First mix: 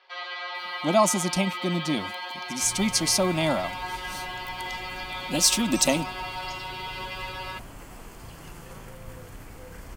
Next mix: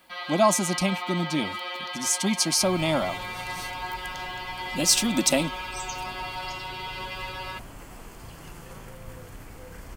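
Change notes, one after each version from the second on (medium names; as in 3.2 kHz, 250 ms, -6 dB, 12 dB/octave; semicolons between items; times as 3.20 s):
speech: entry -0.55 s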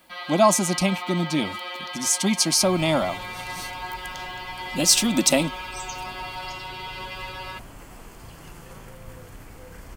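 speech +3.0 dB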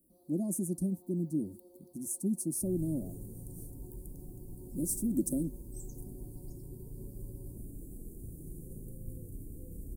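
speech -7.5 dB; first sound -5.5 dB; master: add elliptic band-stop 360–9800 Hz, stop band 70 dB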